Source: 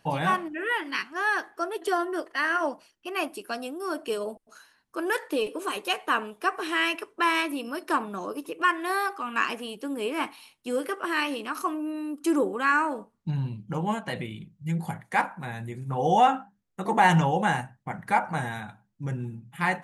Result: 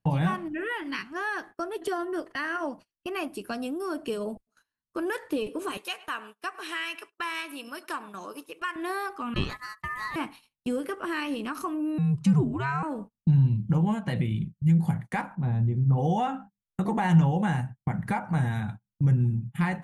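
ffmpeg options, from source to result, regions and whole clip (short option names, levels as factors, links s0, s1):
-filter_complex "[0:a]asettb=1/sr,asplit=3[s0][s1][s2];[s0]atrim=end=5.774[s3];[s1]atrim=start=5.77:end=8.76,asetpts=PTS-STARTPTS,afade=t=in:d=0.004:c=qsin,afade=t=out:st=2.986:d=0.004:c=qsin,highpass=f=1500:p=1,asplit=2[s4][s5];[s5]adelay=105,lowpass=f=2000:p=1,volume=0.133,asplit=2[s6][s7];[s7]adelay=105,lowpass=f=2000:p=1,volume=0.23[s8];[s4][s6][s8]amix=inputs=3:normalize=0,atrim=end_sample=131859[s9];[s2]atrim=start=8.756[s10];[s3][s9]acrossfade=d=0.004:c1=hsin:c2=qsin[s11];[s11][s10]acrossfade=d=0.004:c1=qsin:c2=hsin,asettb=1/sr,asplit=3[s12][s13][s14];[s12]atrim=end=9.344[s15];[s13]atrim=start=9.34:end=10.16,asetpts=PTS-STARTPTS,afade=t=in:d=0.004:c=qsin,afade=t=out:st=0.816:d=0.004:c=qsin,agate=range=0.224:threshold=0.0141:ratio=16:release=100:detection=peak,lowshelf=f=170:g=11.5,aeval=exprs='val(0)*sin(2*PI*1500*n/s)':c=same[s16];[s14]atrim=start=10.156[s17];[s15][s16]acrossfade=d=0.004:c1=hsin:c2=qsin[s18];[s18][s17]acrossfade=d=0.004:c1=qsin:c2=hsin,asettb=1/sr,asplit=3[s19][s20][s21];[s19]atrim=end=11.984[s22];[s20]atrim=start=11.98:end=12.83,asetpts=PTS-STARTPTS,afade=t=in:d=0.004:c=qsin,afade=t=out:st=0.846:d=0.004:c=qsin,afreqshift=-140,highpass=150,lowpass=6600[s23];[s21]atrim=start=12.826[s24];[s22][s23]acrossfade=d=0.004:c1=hsin:c2=qsin[s25];[s25][s24]acrossfade=d=0.004:c1=qsin:c2=hsin,asettb=1/sr,asplit=3[s26][s27][s28];[s26]atrim=end=15.354[s29];[s27]atrim=start=15.35:end=15.98,asetpts=PTS-STARTPTS,afade=t=in:d=0.004:c=qsin,afade=t=out:st=0.626:d=0.004:c=qsin,lowpass=2600,equalizer=f=1900:w=1.1:g=-11.5[s30];[s28]atrim=start=15.976[s31];[s29][s30]acrossfade=d=0.004:c1=hsin:c2=qsin[s32];[s32][s31]acrossfade=d=0.004:c1=qsin:c2=hsin,acompressor=threshold=0.0178:ratio=2,agate=range=0.0355:threshold=0.00447:ratio=16:detection=peak,bass=f=250:g=15,treble=f=4000:g=-1,volume=1.12"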